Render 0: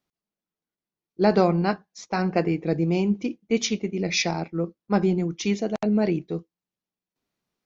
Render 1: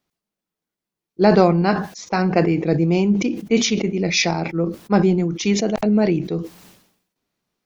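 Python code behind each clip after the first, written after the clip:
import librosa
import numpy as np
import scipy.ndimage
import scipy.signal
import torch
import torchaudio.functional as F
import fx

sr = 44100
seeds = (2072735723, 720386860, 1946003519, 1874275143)

y = fx.sustainer(x, sr, db_per_s=78.0)
y = F.gain(torch.from_numpy(y), 5.0).numpy()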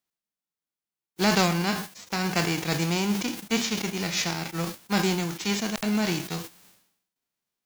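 y = fx.envelope_flatten(x, sr, power=0.3)
y = F.gain(torch.from_numpy(y), -8.5).numpy()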